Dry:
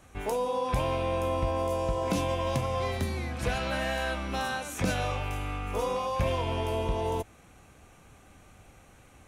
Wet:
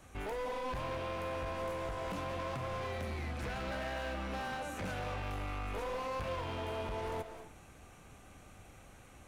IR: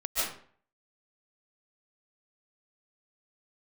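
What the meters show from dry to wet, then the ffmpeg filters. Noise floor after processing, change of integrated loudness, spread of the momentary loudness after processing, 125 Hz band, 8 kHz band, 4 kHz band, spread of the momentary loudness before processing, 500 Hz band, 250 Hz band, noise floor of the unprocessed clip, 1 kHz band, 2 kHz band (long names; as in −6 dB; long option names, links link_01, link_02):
−57 dBFS, −8.5 dB, 18 LU, −10.0 dB, −11.5 dB, −9.0 dB, 4 LU, −9.0 dB, −9.5 dB, −56 dBFS, −8.0 dB, −6.5 dB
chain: -filter_complex "[0:a]acrossover=split=1000|2400[link_01][link_02][link_03];[link_01]acompressor=threshold=-32dB:ratio=4[link_04];[link_02]acompressor=threshold=-39dB:ratio=4[link_05];[link_03]acompressor=threshold=-54dB:ratio=4[link_06];[link_04][link_05][link_06]amix=inputs=3:normalize=0,volume=35dB,asoftclip=hard,volume=-35dB,asplit=2[link_07][link_08];[1:a]atrim=start_sample=2205,adelay=40[link_09];[link_08][link_09]afir=irnorm=-1:irlink=0,volume=-17dB[link_10];[link_07][link_10]amix=inputs=2:normalize=0,volume=-1.5dB"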